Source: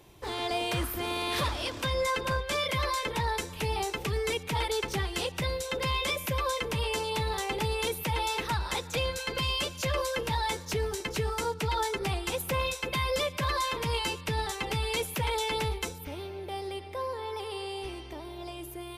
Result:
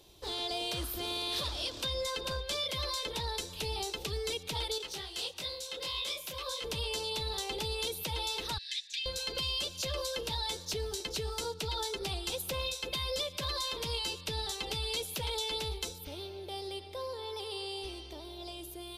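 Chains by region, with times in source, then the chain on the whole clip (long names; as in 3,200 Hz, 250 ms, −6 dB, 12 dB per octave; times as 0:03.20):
0:04.78–0:06.64: low-shelf EQ 310 Hz −10.5 dB + micro pitch shift up and down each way 59 cents
0:08.58–0:09.06: linear-phase brick-wall high-pass 1,600 Hz + high-frequency loss of the air 79 metres
whole clip: graphic EQ with 10 bands 125 Hz −8 dB, 250 Hz −4 dB, 1,000 Hz −5 dB, 2,000 Hz −9 dB, 4,000 Hz +9 dB; downward compressor 2.5 to 1, threshold −31 dBFS; level −1.5 dB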